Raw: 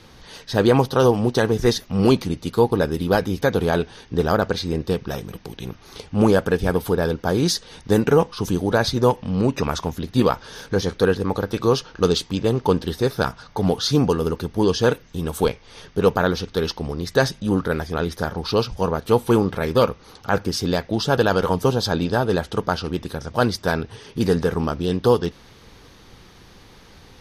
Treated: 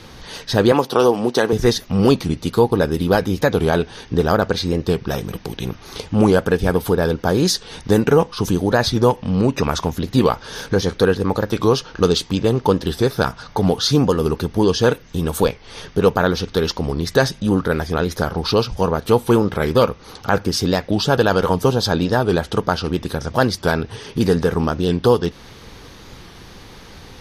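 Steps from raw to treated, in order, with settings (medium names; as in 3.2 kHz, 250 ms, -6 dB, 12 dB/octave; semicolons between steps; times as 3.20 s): 0.72–1.53 s: high-pass 240 Hz 12 dB/octave; in parallel at +2 dB: compression, threshold -26 dBFS, peak gain reduction 15 dB; on the sum: warped record 45 rpm, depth 100 cents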